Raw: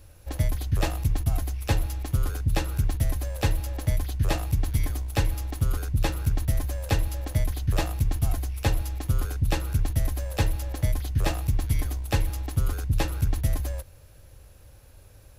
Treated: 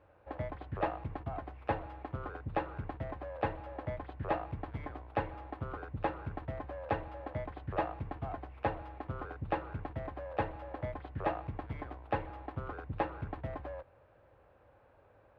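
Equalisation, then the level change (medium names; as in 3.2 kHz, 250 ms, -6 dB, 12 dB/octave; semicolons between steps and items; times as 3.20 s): band-pass filter 880 Hz, Q 0.93; distance through air 480 m; +2.5 dB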